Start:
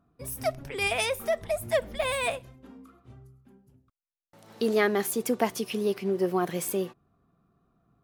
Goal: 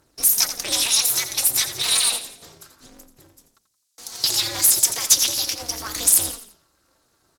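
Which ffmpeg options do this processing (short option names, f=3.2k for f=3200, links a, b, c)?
-filter_complex "[0:a]afftfilt=real='re*lt(hypot(re,im),0.251)':imag='im*lt(hypot(re,im),0.251)':win_size=1024:overlap=0.75,aecho=1:1:5.3:0.38,alimiter=limit=-23dB:level=0:latency=1:release=44,acompressor=threshold=-36dB:ratio=3,aphaser=in_gain=1:out_gain=1:delay=5:decay=0.53:speed=0.3:type=triangular,volume=29.5dB,asoftclip=hard,volume=-29.5dB,crystalizer=i=8.5:c=0,highpass=140,lowpass=4.7k,asplit=2[a][b];[b]asplit=4[c][d][e][f];[c]adelay=93,afreqshift=-38,volume=-11.5dB[g];[d]adelay=186,afreqshift=-76,volume=-19.7dB[h];[e]adelay=279,afreqshift=-114,volume=-27.9dB[i];[f]adelay=372,afreqshift=-152,volume=-36dB[j];[g][h][i][j]amix=inputs=4:normalize=0[k];[a][k]amix=inputs=2:normalize=0,aexciter=amount=8.3:drive=1:freq=3.7k,asetrate=48000,aresample=44100,aeval=exprs='val(0)*sgn(sin(2*PI*120*n/s))':c=same"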